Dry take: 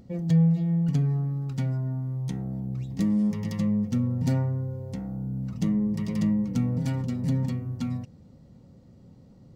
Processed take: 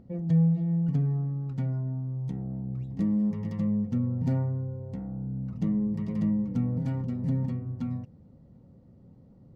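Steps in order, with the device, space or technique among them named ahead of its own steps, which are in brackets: through cloth (high shelf 2700 Hz -18 dB); 1.83–2.5 bell 1500 Hz -4 dB 1.2 oct; gain -2 dB

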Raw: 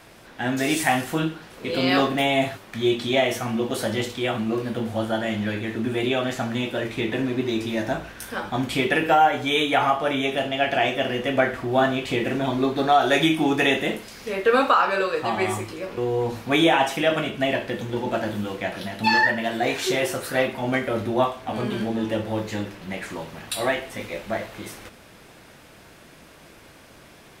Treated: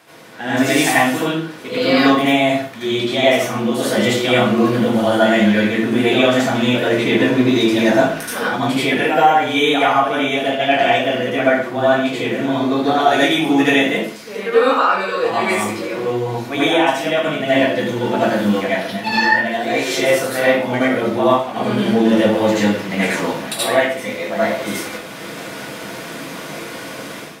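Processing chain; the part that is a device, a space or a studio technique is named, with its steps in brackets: far laptop microphone (reverb RT60 0.45 s, pre-delay 71 ms, DRR -8 dB; HPF 180 Hz 12 dB/oct; AGC); gain -1 dB

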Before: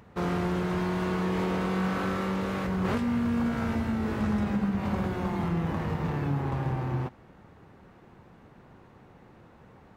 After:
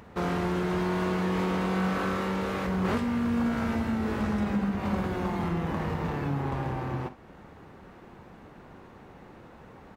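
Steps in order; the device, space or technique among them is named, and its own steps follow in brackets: parallel compression (in parallel at -2 dB: compressor, threshold -43 dBFS, peak gain reduction 18 dB); on the sum: bell 120 Hz -5 dB 0.92 oct; early reflections 44 ms -14.5 dB, 64 ms -17 dB

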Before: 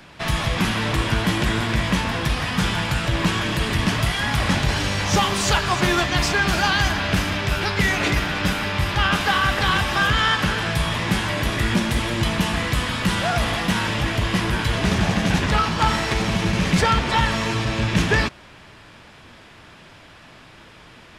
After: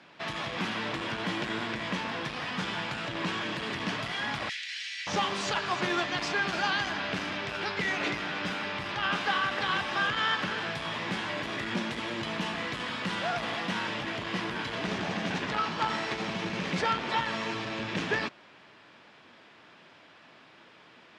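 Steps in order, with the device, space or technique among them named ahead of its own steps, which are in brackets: 4.49–5.07 elliptic high-pass 1900 Hz, stop band 80 dB; public-address speaker with an overloaded transformer (core saturation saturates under 230 Hz; BPF 220–5000 Hz); gain -8 dB

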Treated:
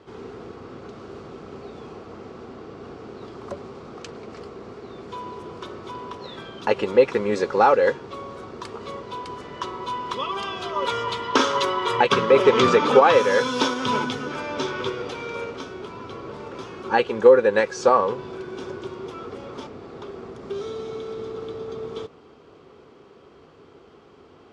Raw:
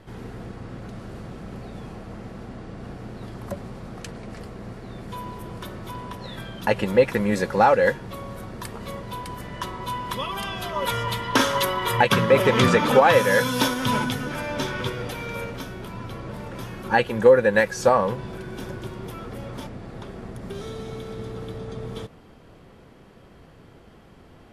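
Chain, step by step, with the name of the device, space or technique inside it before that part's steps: car door speaker (speaker cabinet 110–6800 Hz, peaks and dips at 120 Hz -9 dB, 190 Hz -9 dB, 410 Hz +8 dB, 620 Hz -3 dB, 1200 Hz +5 dB, 1800 Hz -6 dB)

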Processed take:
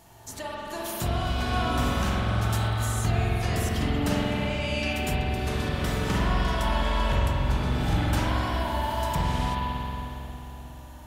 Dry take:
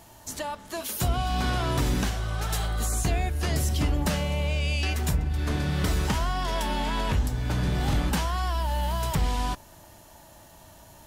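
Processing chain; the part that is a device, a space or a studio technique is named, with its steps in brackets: 5.17–5.69 high shelf 4200 Hz +6.5 dB; dub delay into a spring reverb (darkening echo 0.299 s, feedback 70%, low-pass 1000 Hz, level -9 dB; spring tank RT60 3.1 s, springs 45 ms, chirp 30 ms, DRR -5 dB); gain -4 dB

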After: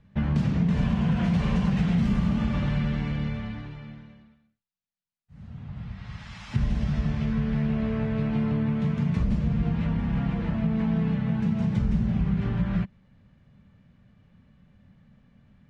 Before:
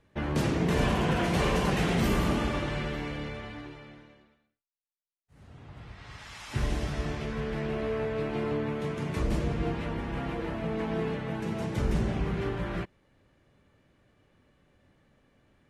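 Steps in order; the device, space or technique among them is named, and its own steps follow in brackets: jukebox (LPF 5400 Hz 12 dB/oct; resonant low shelf 260 Hz +8 dB, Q 3; compressor 4:1, threshold -21 dBFS, peak gain reduction 8.5 dB)

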